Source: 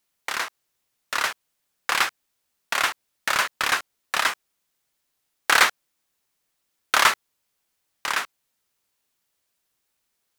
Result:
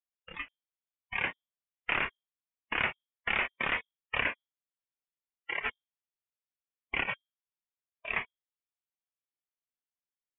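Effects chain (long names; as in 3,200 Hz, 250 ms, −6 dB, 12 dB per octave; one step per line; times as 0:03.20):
compressor whose output falls as the input rises −20 dBFS, ratio −0.5
mains-hum notches 50/100/150/200/250/300/350/400/450 Hz
noise reduction from a noise print of the clip's start 18 dB
voice inversion scrambler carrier 3,600 Hz
level −7.5 dB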